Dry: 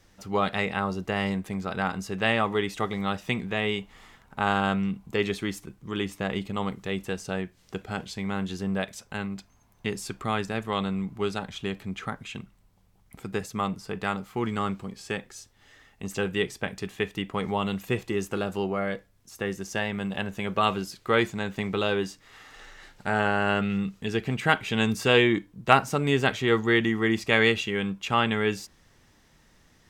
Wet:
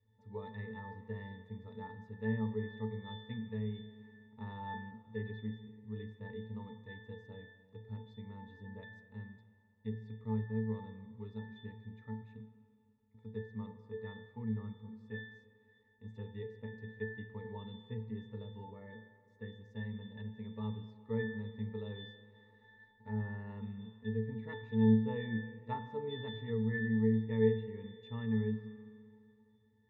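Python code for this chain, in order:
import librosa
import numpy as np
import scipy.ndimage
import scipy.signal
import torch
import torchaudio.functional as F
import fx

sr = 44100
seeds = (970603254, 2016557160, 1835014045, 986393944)

y = fx.octave_resonator(x, sr, note='A', decay_s=0.53)
y = fx.env_lowpass_down(y, sr, base_hz=2300.0, full_db=-37.5)
y = fx.rev_spring(y, sr, rt60_s=2.5, pass_ms=(42, 48), chirp_ms=50, drr_db=11.0)
y = y * 10.0 ** (3.5 / 20.0)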